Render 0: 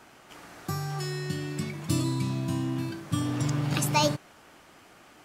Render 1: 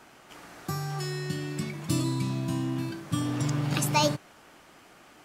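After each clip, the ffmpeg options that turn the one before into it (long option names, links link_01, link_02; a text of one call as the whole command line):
ffmpeg -i in.wav -af "equalizer=frequency=95:width=5.6:gain=-6" out.wav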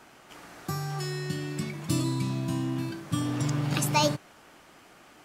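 ffmpeg -i in.wav -af anull out.wav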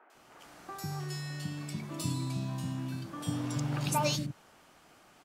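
ffmpeg -i in.wav -filter_complex "[0:a]acrossover=split=340|2000[link_01][link_02][link_03];[link_03]adelay=100[link_04];[link_01]adelay=150[link_05];[link_05][link_02][link_04]amix=inputs=3:normalize=0,volume=-4.5dB" out.wav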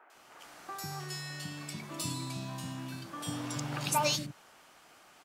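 ffmpeg -i in.wav -af "lowshelf=frequency=400:gain=-10,volume=3dB" out.wav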